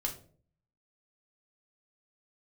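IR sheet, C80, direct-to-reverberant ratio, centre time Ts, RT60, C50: 15.5 dB, -0.5 dB, 15 ms, 0.50 s, 11.0 dB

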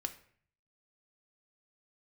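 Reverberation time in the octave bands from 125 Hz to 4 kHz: 0.90, 0.60, 0.55, 0.50, 0.55, 0.40 s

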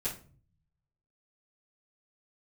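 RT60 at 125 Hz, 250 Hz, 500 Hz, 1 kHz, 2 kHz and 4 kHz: 1.2, 0.70, 0.45, 0.35, 0.30, 0.30 s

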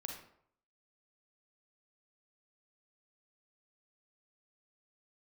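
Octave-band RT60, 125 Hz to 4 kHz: 0.65, 0.60, 0.65, 0.65, 0.50, 0.40 s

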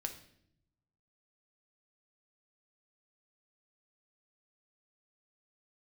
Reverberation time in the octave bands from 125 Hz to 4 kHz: 1.5, 1.1, 0.80, 0.60, 0.65, 0.60 s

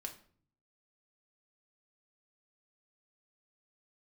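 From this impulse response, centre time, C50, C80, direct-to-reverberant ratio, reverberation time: 11 ms, 12.0 dB, 16.5 dB, 2.5 dB, 0.50 s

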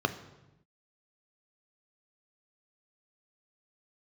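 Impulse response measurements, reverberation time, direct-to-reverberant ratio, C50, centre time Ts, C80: 0.95 s, 8.0 dB, 13.0 dB, 8 ms, 15.0 dB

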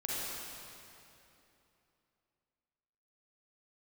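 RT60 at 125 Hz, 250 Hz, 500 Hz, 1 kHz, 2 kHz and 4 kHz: 3.2, 3.3, 3.0, 2.9, 2.6, 2.4 s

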